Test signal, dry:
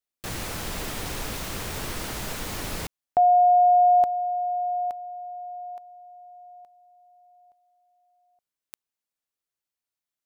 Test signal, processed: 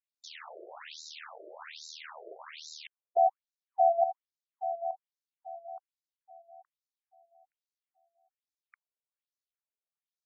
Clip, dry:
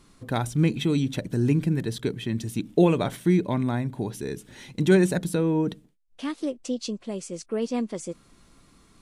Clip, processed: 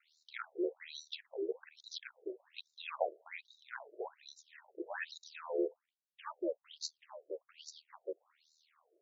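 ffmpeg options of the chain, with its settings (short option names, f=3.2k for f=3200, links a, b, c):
-af "aeval=exprs='val(0)*sin(2*PI*39*n/s)':c=same,afftfilt=real='re*between(b*sr/1024,470*pow(5300/470,0.5+0.5*sin(2*PI*1.2*pts/sr))/1.41,470*pow(5300/470,0.5+0.5*sin(2*PI*1.2*pts/sr))*1.41)':imag='im*between(b*sr/1024,470*pow(5300/470,0.5+0.5*sin(2*PI*1.2*pts/sr))/1.41,470*pow(5300/470,0.5+0.5*sin(2*PI*1.2*pts/sr))*1.41)':win_size=1024:overlap=0.75,volume=-1.5dB"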